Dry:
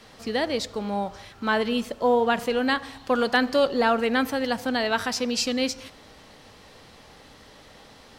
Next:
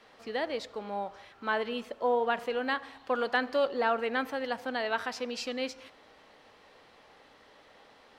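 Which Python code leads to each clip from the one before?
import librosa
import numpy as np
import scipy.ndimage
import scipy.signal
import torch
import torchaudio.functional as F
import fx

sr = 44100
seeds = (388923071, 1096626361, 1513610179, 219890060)

y = fx.bass_treble(x, sr, bass_db=-13, treble_db=-11)
y = y * 10.0 ** (-5.5 / 20.0)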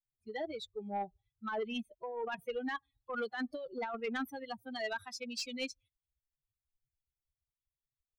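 y = fx.bin_expand(x, sr, power=3.0)
y = fx.over_compress(y, sr, threshold_db=-37.0, ratio=-1.0)
y = 10.0 ** (-30.0 / 20.0) * np.tanh(y / 10.0 ** (-30.0 / 20.0))
y = y * 10.0 ** (2.0 / 20.0)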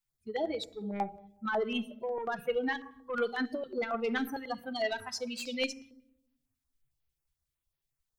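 y = fx.room_shoebox(x, sr, seeds[0], volume_m3=2200.0, walls='furnished', distance_m=0.78)
y = fx.filter_held_notch(y, sr, hz=11.0, low_hz=570.0, high_hz=7800.0)
y = y * 10.0 ** (6.5 / 20.0)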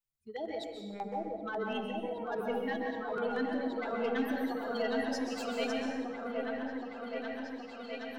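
y = fx.echo_opening(x, sr, ms=772, hz=750, octaves=1, feedback_pct=70, wet_db=0)
y = fx.rev_plate(y, sr, seeds[1], rt60_s=1.1, hf_ratio=0.85, predelay_ms=115, drr_db=2.0)
y = y * 10.0 ** (-6.5 / 20.0)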